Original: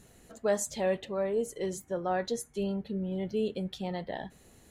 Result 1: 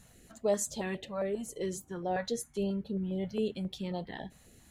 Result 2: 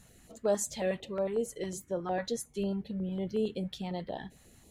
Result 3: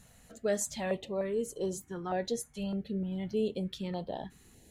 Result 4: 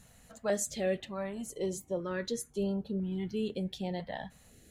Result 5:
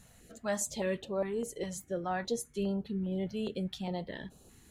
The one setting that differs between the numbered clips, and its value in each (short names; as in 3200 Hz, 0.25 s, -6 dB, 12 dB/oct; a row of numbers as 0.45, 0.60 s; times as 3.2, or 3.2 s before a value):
stepped notch, rate: 7.4, 11, 3.3, 2, 4.9 Hz